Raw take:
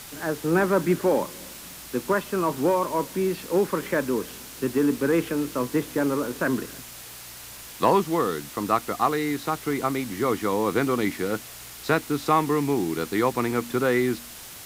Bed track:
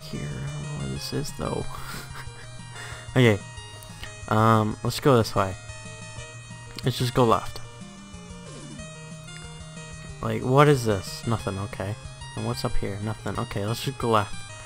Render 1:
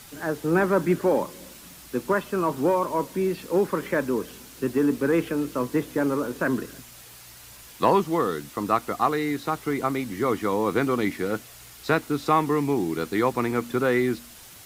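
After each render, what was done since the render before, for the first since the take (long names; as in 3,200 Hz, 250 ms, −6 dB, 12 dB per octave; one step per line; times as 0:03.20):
broadband denoise 6 dB, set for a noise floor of −42 dBFS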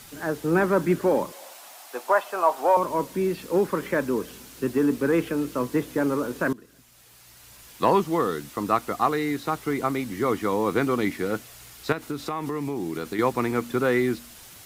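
0:01.32–0:02.77: high-pass with resonance 720 Hz, resonance Q 4.2
0:06.53–0:07.98: fade in, from −20.5 dB
0:11.92–0:13.19: downward compressor, threshold −25 dBFS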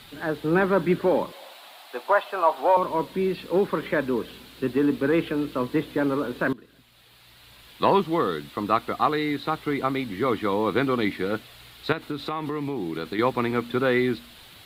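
high shelf with overshoot 4,800 Hz −7.5 dB, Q 3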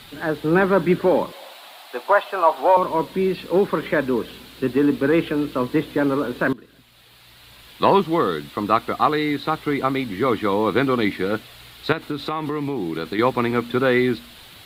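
level +4 dB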